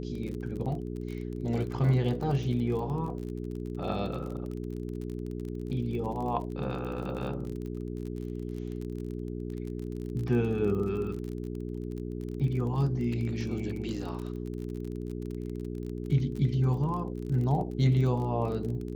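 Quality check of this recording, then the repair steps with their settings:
surface crackle 33 per second −36 dBFS
mains hum 60 Hz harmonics 7 −36 dBFS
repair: click removal
hum removal 60 Hz, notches 7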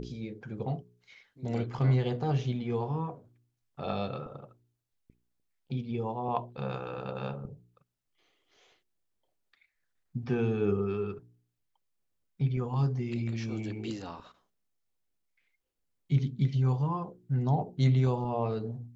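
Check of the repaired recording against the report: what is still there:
none of them is left

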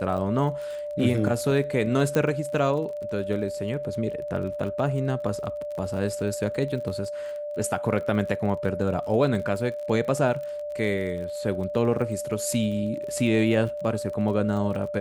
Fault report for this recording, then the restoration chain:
surface crackle 35 per second −34 dBFS
whistle 590 Hz −30 dBFS
0:02.15: click −13 dBFS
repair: click removal
notch filter 590 Hz, Q 30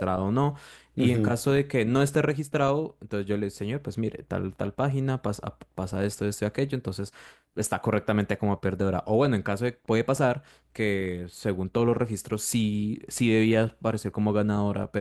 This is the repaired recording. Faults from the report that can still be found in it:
0:02.15: click

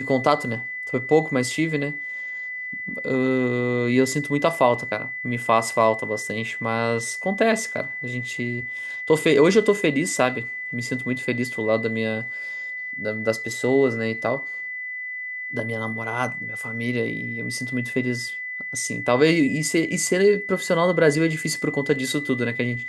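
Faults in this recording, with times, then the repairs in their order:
whistle 2,000 Hz −29 dBFS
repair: notch filter 2,000 Hz, Q 30

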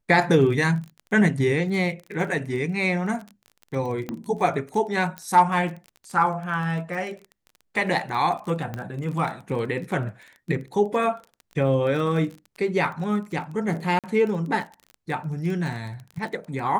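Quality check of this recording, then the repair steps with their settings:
surface crackle 24 per second −32 dBFS
0:04.09: click −17 dBFS
0:05.18: click −17 dBFS
0:08.74: click −18 dBFS
0:13.99–0:14.04: drop-out 47 ms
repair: click removal
repair the gap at 0:13.99, 47 ms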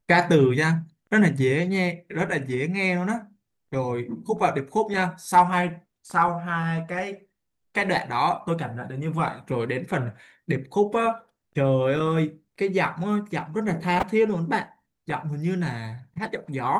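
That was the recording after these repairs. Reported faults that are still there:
none of them is left

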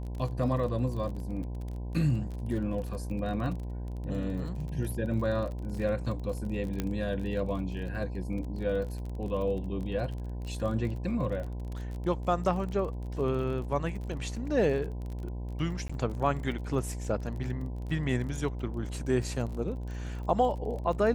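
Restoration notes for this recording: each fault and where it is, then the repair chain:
mains buzz 60 Hz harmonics 17 −36 dBFS
surface crackle 31 per second −37 dBFS
0:06.80: click −17 dBFS
0:15.88–0:15.89: drop-out 15 ms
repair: click removal
hum removal 60 Hz, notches 17
repair the gap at 0:15.88, 15 ms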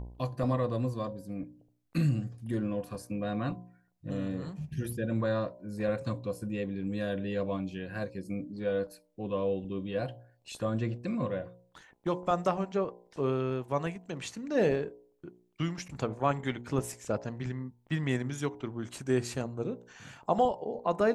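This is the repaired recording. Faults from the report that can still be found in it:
none of them is left

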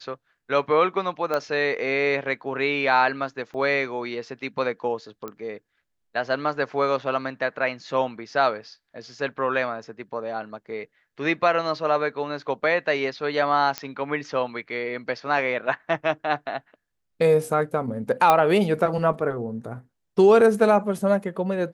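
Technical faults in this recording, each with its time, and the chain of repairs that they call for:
0:01.34: click −13 dBFS
0:03.54–0:03.55: drop-out 5.2 ms
0:05.28: click −20 dBFS
0:13.78: click −11 dBFS
0:18.30: click −5 dBFS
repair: click removal
repair the gap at 0:03.54, 5.2 ms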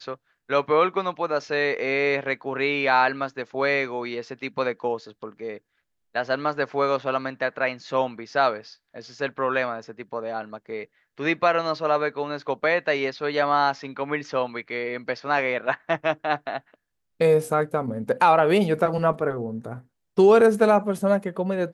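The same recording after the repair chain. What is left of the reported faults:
none of them is left

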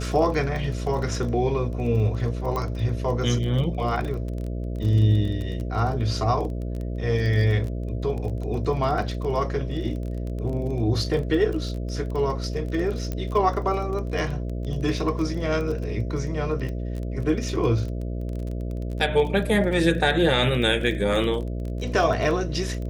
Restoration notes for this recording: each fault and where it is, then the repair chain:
mains buzz 60 Hz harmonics 11 −29 dBFS
surface crackle 22 per second −30 dBFS
0:02.56: click −16 dBFS
0:13.12: click −16 dBFS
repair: click removal
hum removal 60 Hz, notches 11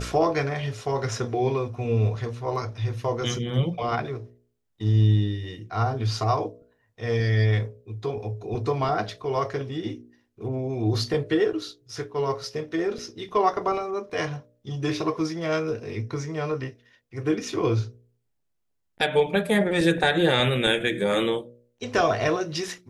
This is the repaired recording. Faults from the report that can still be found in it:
0:02.56: click

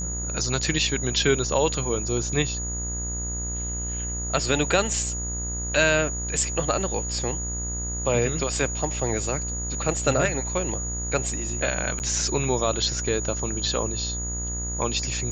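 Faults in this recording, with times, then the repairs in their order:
mains buzz 60 Hz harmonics 34 −32 dBFS
whistle 6,800 Hz −30 dBFS
0:11.99–0:12.00: drop-out 9.5 ms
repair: hum removal 60 Hz, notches 34
notch filter 6,800 Hz, Q 30
repair the gap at 0:11.99, 9.5 ms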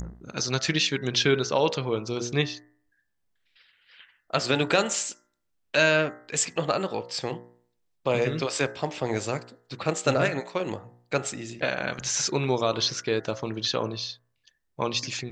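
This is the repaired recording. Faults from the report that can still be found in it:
none of them is left

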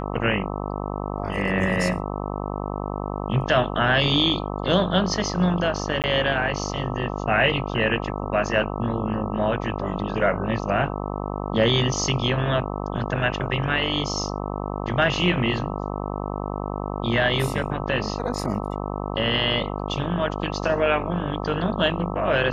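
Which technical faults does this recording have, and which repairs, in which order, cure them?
mains buzz 50 Hz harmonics 26 −29 dBFS
0:06.02–0:06.04: drop-out 18 ms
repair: hum removal 50 Hz, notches 26
repair the gap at 0:06.02, 18 ms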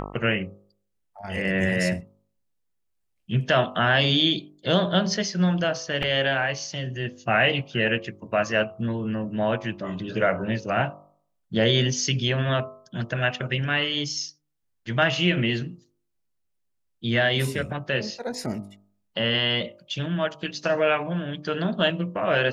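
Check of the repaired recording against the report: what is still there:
none of them is left

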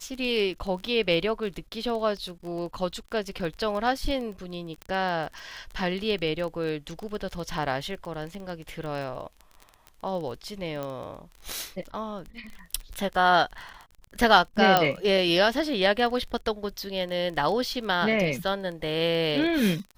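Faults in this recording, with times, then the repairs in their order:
surface crackle 20 per second −32 dBFS
0:04.82: click −22 dBFS
0:10.83: click −20 dBFS
0:14.77: click −6 dBFS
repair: click removal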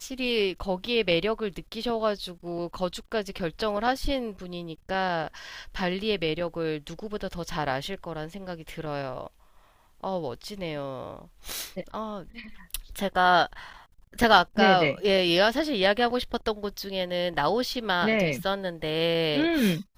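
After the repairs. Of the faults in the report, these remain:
none of them is left

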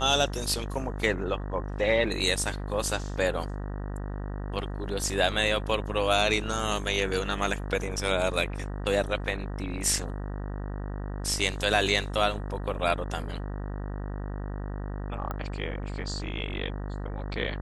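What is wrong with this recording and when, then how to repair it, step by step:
mains buzz 50 Hz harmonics 38 −34 dBFS
0:15.31: click −21 dBFS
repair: click removal
hum removal 50 Hz, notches 38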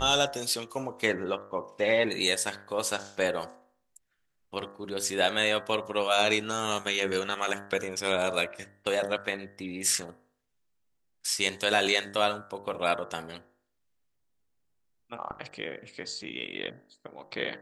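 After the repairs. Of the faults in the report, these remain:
none of them is left

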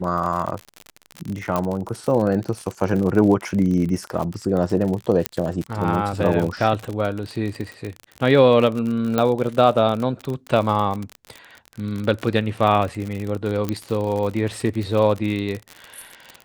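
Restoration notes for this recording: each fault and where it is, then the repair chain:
surface crackle 50 per second −25 dBFS
0:01.56: click −9 dBFS
0:05.26: click −2 dBFS
0:09.18: click −8 dBFS
0:13.69: click −10 dBFS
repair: click removal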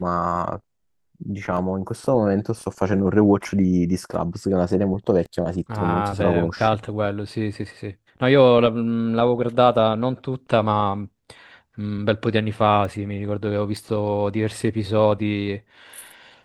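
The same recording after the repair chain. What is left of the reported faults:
0:01.56: click
0:05.26: click

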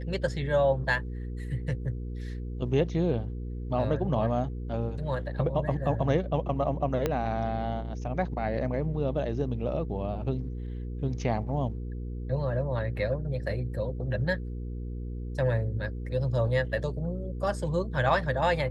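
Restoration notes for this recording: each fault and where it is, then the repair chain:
mains hum 60 Hz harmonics 8 −35 dBFS
0:07.06: click −13 dBFS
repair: click removal
hum removal 60 Hz, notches 8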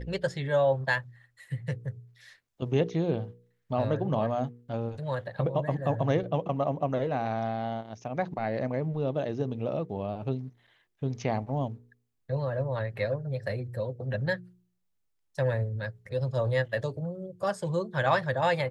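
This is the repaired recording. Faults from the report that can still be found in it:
0:07.06: click

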